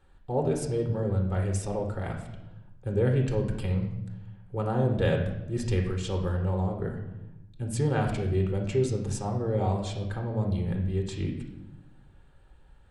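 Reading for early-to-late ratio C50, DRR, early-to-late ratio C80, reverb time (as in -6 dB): 6.0 dB, 2.0 dB, 9.0 dB, 0.90 s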